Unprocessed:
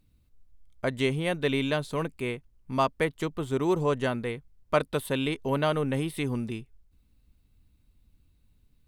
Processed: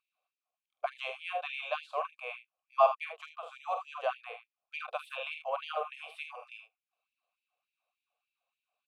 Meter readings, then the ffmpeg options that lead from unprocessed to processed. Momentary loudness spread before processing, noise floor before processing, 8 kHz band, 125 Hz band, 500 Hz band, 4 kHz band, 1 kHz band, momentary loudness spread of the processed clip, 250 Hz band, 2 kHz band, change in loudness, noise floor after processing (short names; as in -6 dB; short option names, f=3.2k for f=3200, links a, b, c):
8 LU, -65 dBFS, under -20 dB, under -40 dB, -7.5 dB, -8.0 dB, -0.5 dB, 18 LU, under -40 dB, -6.0 dB, -6.5 dB, under -85 dBFS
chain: -filter_complex "[0:a]asplit=3[a][b][c];[a]bandpass=f=730:t=q:w=8,volume=0dB[d];[b]bandpass=f=1.09k:t=q:w=8,volume=-6dB[e];[c]bandpass=f=2.44k:t=q:w=8,volume=-9dB[f];[d][e][f]amix=inputs=3:normalize=0,aecho=1:1:46|78:0.422|0.335,afftfilt=real='re*gte(b*sr/1024,430*pow(1900/430,0.5+0.5*sin(2*PI*3.4*pts/sr)))':imag='im*gte(b*sr/1024,430*pow(1900/430,0.5+0.5*sin(2*PI*3.4*pts/sr)))':win_size=1024:overlap=0.75,volume=8.5dB"